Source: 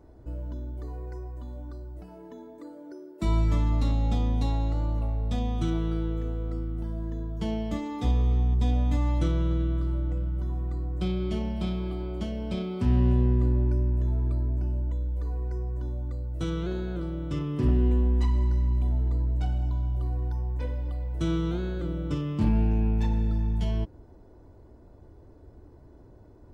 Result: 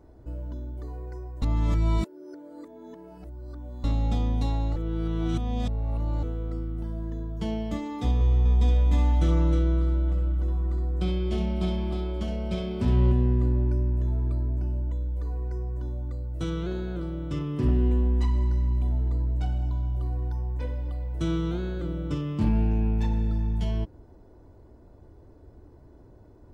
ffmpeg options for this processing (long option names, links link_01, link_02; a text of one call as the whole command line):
ffmpeg -i in.wav -filter_complex "[0:a]asettb=1/sr,asplit=3[link_01][link_02][link_03];[link_01]atrim=end=8.144[link_04];[link_02]atrim=start=8.14:end=13.12,asetpts=PTS-STARTPTS,afade=type=in:duration=0.004:curve=qsin,afade=type=out:start_time=4.976:duration=0.004:curve=qsin,aecho=1:1:67|312:0.473|0.596,atrim=end_sample=219618[link_05];[link_03]atrim=start=13.116[link_06];[link_04][link_05]acrossfade=duration=0.004:curve1=hsin:curve2=qsin[link_07];[link_07][link_06]acrossfade=duration=0.004:curve1=qsin:curve2=hsin,asplit=5[link_08][link_09][link_10][link_11][link_12];[link_08]atrim=end=1.422[link_13];[link_09]atrim=start=1.418:end=3.842,asetpts=PTS-STARTPTS,areverse[link_14];[link_10]atrim=start=3.838:end=4.762[link_15];[link_11]atrim=start=4.758:end=6.232,asetpts=PTS-STARTPTS,areverse[link_16];[link_12]atrim=start=6.228[link_17];[link_13][link_14]acrossfade=duration=0.004:curve1=hsin:curve2=hsin[link_18];[link_18][link_15]acrossfade=duration=0.004:curve1=hsin:curve2=hsin[link_19];[link_19][link_16]acrossfade=duration=0.004:curve1=hsin:curve2=hsin[link_20];[link_20][link_17]acrossfade=duration=0.004:curve1=hsin:curve2=hsin" out.wav